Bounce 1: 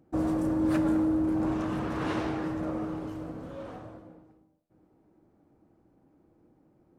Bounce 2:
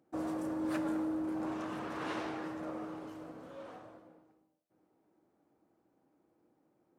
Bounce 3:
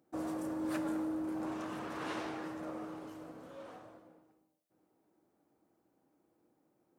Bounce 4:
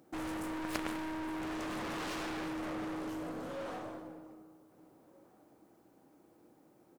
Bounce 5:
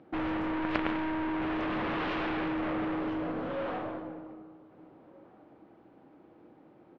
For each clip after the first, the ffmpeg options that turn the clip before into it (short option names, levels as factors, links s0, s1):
-af "highpass=f=470:p=1,volume=0.631"
-af "highshelf=f=6500:g=6.5,volume=0.841"
-filter_complex "[0:a]asplit=2[s0][s1];[s1]adelay=1574,volume=0.0562,highshelf=f=4000:g=-35.4[s2];[s0][s2]amix=inputs=2:normalize=0,aeval=exprs='0.0631*(cos(1*acos(clip(val(0)/0.0631,-1,1)))-cos(1*PI/2))+0.0141*(cos(6*acos(clip(val(0)/0.0631,-1,1)))-cos(6*PI/2))':c=same,aeval=exprs='clip(val(0),-1,0.00422)':c=same,volume=3.35"
-af "lowpass=f=3200:w=0.5412,lowpass=f=3200:w=1.3066,volume=2.24"